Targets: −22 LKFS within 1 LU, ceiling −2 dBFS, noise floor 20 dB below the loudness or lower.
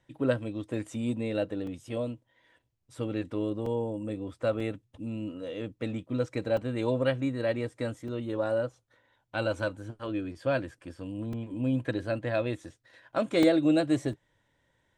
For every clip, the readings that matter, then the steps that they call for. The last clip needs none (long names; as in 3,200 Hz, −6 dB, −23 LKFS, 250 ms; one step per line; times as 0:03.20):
number of dropouts 8; longest dropout 3.0 ms; integrated loudness −31.5 LKFS; sample peak −11.5 dBFS; target loudness −22.0 LKFS
→ repair the gap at 0:01.67/0:03.66/0:04.60/0:06.57/0:08.08/0:11.33/0:13.43/0:14.13, 3 ms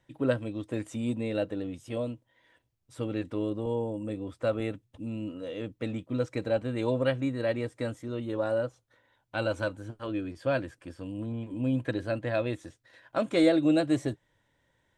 number of dropouts 0; integrated loudness −31.0 LKFS; sample peak −11.5 dBFS; target loudness −22.0 LKFS
→ level +9 dB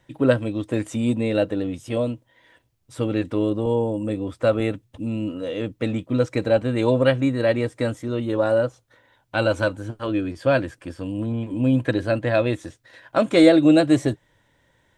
integrated loudness −22.0 LKFS; sample peak −2.5 dBFS; background noise floor −65 dBFS